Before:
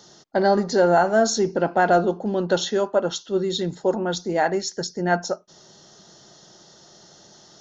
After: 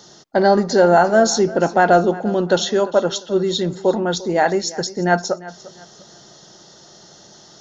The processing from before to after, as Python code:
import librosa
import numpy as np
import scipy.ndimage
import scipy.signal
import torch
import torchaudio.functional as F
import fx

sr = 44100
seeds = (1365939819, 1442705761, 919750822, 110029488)

y = fx.echo_feedback(x, sr, ms=348, feedback_pct=32, wet_db=-18.5)
y = y * librosa.db_to_amplitude(4.5)